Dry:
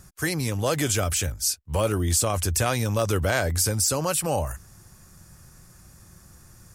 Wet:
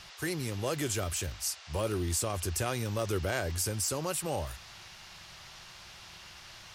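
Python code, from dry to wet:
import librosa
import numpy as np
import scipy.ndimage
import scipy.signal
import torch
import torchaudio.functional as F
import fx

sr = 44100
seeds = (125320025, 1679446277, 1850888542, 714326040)

y = fx.dmg_noise_band(x, sr, seeds[0], low_hz=610.0, high_hz=5700.0, level_db=-42.0)
y = fx.small_body(y, sr, hz=(370.0, 2800.0), ring_ms=45, db=7)
y = y * 10.0 ** (-9.0 / 20.0)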